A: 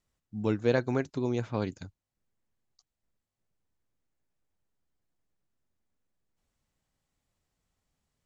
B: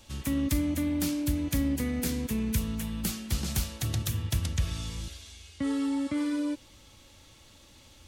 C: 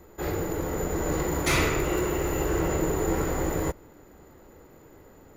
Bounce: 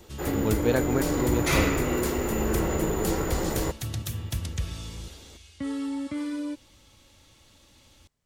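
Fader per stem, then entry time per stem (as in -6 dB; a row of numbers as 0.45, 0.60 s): +1.5, -2.0, -1.0 dB; 0.00, 0.00, 0.00 s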